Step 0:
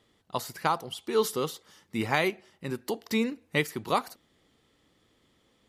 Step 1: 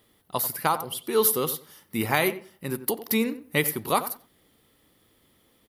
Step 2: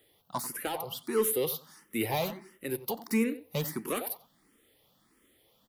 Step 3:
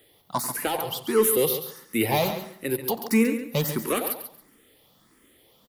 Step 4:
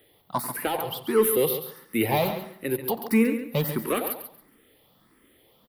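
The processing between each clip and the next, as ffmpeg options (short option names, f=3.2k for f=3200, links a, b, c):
-filter_complex "[0:a]asplit=2[a][b];[b]adelay=91,lowpass=f=1.6k:p=1,volume=-12dB,asplit=2[c][d];[d]adelay=91,lowpass=f=1.6k:p=1,volume=0.22,asplit=2[e][f];[f]adelay=91,lowpass=f=1.6k:p=1,volume=0.22[g];[a][c][e][g]amix=inputs=4:normalize=0,aexciter=amount=4.8:drive=7.8:freq=9.7k,volume=2.5dB"
-filter_complex "[0:a]equalizer=f=69:w=0.88:g=-7.5,acrossover=split=480[a][b];[b]asoftclip=type=tanh:threshold=-25.5dB[c];[a][c]amix=inputs=2:normalize=0,asplit=2[d][e];[e]afreqshift=1.5[f];[d][f]amix=inputs=2:normalize=1"
-af "aecho=1:1:138|276|414:0.316|0.0632|0.0126,volume=7dB"
-af "equalizer=f=6.6k:t=o:w=0.81:g=-14.5"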